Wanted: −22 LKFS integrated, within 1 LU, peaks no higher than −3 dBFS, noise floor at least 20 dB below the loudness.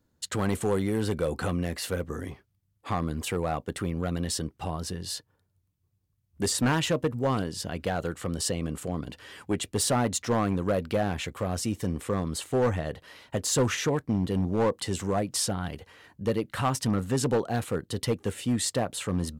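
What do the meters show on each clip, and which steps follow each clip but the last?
share of clipped samples 1.2%; peaks flattened at −19.0 dBFS; integrated loudness −29.0 LKFS; sample peak −19.0 dBFS; target loudness −22.0 LKFS
→ clipped peaks rebuilt −19 dBFS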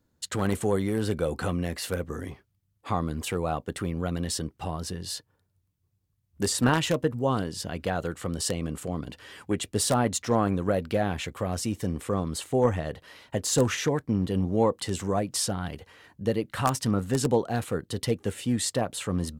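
share of clipped samples 0.0%; integrated loudness −28.5 LKFS; sample peak −10.0 dBFS; target loudness −22.0 LKFS
→ level +6.5 dB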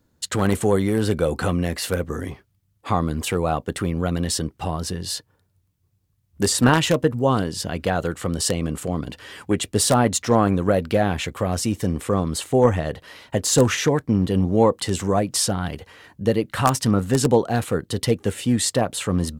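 integrated loudness −22.0 LKFS; sample peak −3.5 dBFS; background noise floor −67 dBFS

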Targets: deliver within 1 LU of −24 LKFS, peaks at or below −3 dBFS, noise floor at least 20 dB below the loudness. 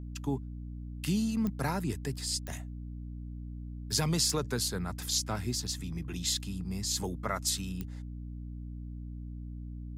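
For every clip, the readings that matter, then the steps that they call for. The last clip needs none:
number of clicks 4; mains hum 60 Hz; hum harmonics up to 300 Hz; level of the hum −38 dBFS; integrated loudness −34.0 LKFS; sample peak −17.5 dBFS; target loudness −24.0 LKFS
→ click removal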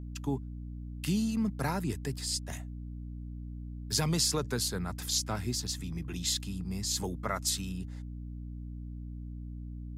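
number of clicks 0; mains hum 60 Hz; hum harmonics up to 300 Hz; level of the hum −38 dBFS
→ mains-hum notches 60/120/180/240/300 Hz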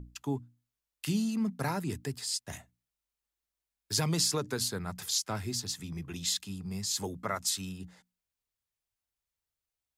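mains hum none found; integrated loudness −33.0 LKFS; sample peak −17.5 dBFS; target loudness −24.0 LKFS
→ level +9 dB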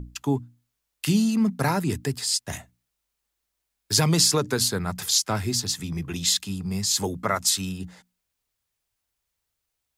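integrated loudness −24.0 LKFS; sample peak −8.5 dBFS; background noise floor −81 dBFS

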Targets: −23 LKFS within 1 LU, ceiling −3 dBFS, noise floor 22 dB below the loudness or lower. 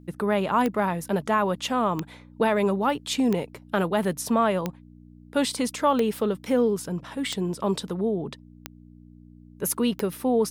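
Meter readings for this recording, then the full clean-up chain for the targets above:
number of clicks 8; mains hum 60 Hz; hum harmonics up to 300 Hz; level of the hum −48 dBFS; integrated loudness −25.5 LKFS; sample peak −10.5 dBFS; target loudness −23.0 LKFS
→ click removal
hum removal 60 Hz, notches 5
level +2.5 dB

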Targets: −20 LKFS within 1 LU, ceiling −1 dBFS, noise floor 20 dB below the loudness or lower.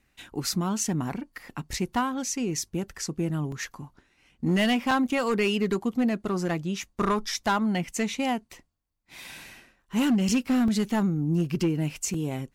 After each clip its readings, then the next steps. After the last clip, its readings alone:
share of clipped samples 1.1%; peaks flattened at −18.0 dBFS; number of dropouts 4; longest dropout 2.8 ms; integrated loudness −27.0 LKFS; sample peak −18.0 dBFS; target loudness −20.0 LKFS
→ clipped peaks rebuilt −18 dBFS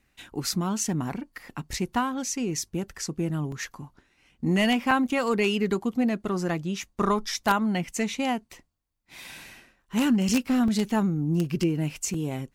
share of clipped samples 0.0%; number of dropouts 4; longest dropout 2.8 ms
→ repair the gap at 0:03.52/0:04.91/0:10.68/0:12.14, 2.8 ms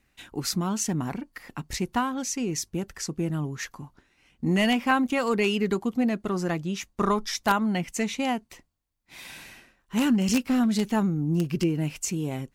number of dropouts 0; integrated loudness −26.5 LKFS; sample peak −9.0 dBFS; target loudness −20.0 LKFS
→ level +6.5 dB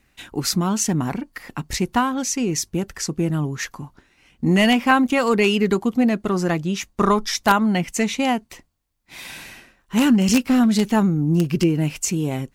integrated loudness −20.0 LKFS; sample peak −2.5 dBFS; background noise floor −64 dBFS

